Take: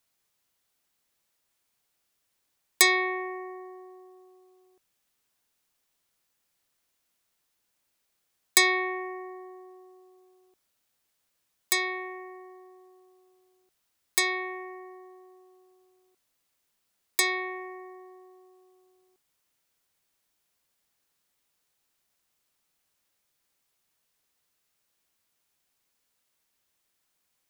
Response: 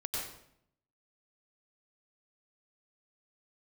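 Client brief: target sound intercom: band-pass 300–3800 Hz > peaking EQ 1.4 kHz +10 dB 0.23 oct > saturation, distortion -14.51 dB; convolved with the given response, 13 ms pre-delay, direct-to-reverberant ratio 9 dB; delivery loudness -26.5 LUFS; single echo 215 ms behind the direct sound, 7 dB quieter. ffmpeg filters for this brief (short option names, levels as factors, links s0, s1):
-filter_complex "[0:a]aecho=1:1:215:0.447,asplit=2[s0][s1];[1:a]atrim=start_sample=2205,adelay=13[s2];[s1][s2]afir=irnorm=-1:irlink=0,volume=0.251[s3];[s0][s3]amix=inputs=2:normalize=0,highpass=300,lowpass=3800,equalizer=f=1400:t=o:w=0.23:g=10,asoftclip=threshold=0.119,volume=1.26"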